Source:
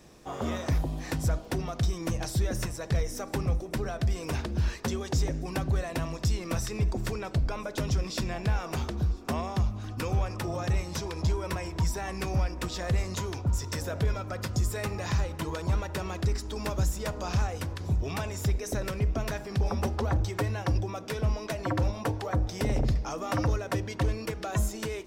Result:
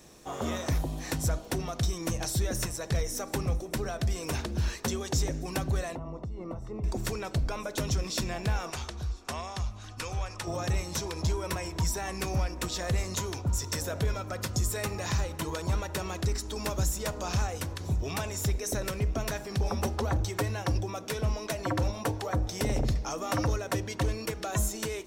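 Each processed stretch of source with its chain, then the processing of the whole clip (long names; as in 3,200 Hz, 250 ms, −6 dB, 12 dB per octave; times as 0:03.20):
0:05.95–0:06.84: downward compressor 12 to 1, threshold −31 dBFS + Savitzky-Golay smoothing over 65 samples
0:08.70–0:10.47: low-pass filter 9,100 Hz + parametric band 230 Hz −11 dB 2.7 octaves
whole clip: bass and treble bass −2 dB, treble +6 dB; notch filter 4,900 Hz, Q 16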